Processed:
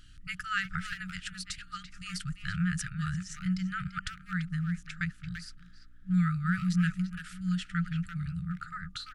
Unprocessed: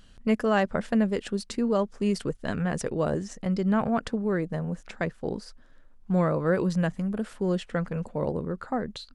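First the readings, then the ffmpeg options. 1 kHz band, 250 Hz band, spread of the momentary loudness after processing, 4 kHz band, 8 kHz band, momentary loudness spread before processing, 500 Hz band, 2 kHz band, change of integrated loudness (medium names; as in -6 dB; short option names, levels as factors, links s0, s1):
-7.5 dB, -6.0 dB, 12 LU, +0.5 dB, 0.0 dB, 8 LU, under -40 dB, +0.5 dB, -5.5 dB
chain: -filter_complex "[0:a]asplit=2[s0][s1];[s1]adelay=340,highpass=300,lowpass=3400,asoftclip=type=hard:threshold=0.0794,volume=0.447[s2];[s0][s2]amix=inputs=2:normalize=0,afftfilt=real='re*(1-between(b*sr/4096,190,1200))':imag='im*(1-between(b*sr/4096,190,1200))':win_size=4096:overlap=0.75,aeval=exprs='val(0)+0.000794*(sin(2*PI*60*n/s)+sin(2*PI*2*60*n/s)/2+sin(2*PI*3*60*n/s)/3+sin(2*PI*4*60*n/s)/4+sin(2*PI*5*60*n/s)/5)':c=same"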